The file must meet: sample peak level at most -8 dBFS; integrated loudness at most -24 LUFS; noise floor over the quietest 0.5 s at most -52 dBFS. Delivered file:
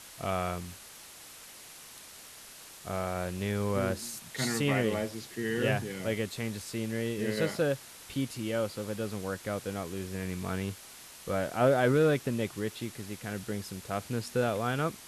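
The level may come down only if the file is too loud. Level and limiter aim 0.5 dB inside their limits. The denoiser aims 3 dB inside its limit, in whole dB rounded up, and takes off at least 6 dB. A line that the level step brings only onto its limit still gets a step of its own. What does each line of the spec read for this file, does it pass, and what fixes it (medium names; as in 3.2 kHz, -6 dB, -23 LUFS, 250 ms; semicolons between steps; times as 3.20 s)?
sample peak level -14.5 dBFS: pass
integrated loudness -32.0 LUFS: pass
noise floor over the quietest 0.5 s -50 dBFS: fail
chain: noise reduction 6 dB, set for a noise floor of -50 dBFS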